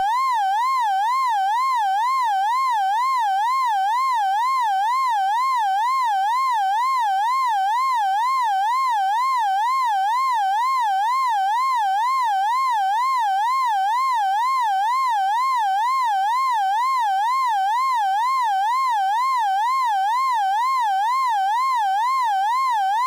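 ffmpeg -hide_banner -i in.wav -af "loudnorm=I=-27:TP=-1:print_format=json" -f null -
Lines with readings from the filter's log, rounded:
"input_i" : "-20.0",
"input_tp" : "-13.5",
"input_lra" : "0.0",
"input_thresh" : "-30.0",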